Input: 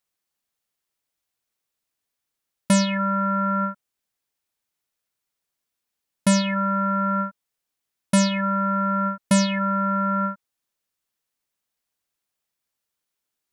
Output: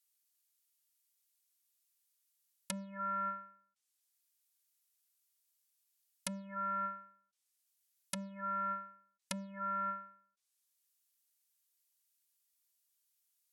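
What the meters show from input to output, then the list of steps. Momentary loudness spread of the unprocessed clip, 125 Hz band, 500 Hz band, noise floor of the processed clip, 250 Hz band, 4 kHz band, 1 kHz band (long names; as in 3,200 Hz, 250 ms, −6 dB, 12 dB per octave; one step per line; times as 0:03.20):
6 LU, below −25 dB, −22.5 dB, −84 dBFS, −26.0 dB, −21.5 dB, −15.0 dB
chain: first-order pre-emphasis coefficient 0.97
treble cut that deepens with the level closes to 380 Hz, closed at −29.5 dBFS
every ending faded ahead of time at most 110 dB per second
level +3.5 dB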